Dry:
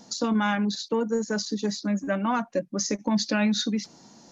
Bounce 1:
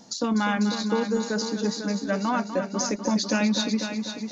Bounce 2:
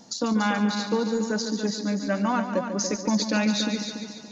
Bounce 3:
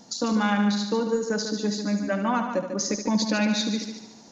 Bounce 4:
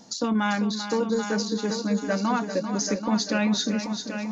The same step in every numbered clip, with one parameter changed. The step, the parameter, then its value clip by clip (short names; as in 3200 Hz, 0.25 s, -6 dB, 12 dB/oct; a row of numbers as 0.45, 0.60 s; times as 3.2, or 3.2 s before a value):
multi-head echo, time: 248, 143, 73, 392 ms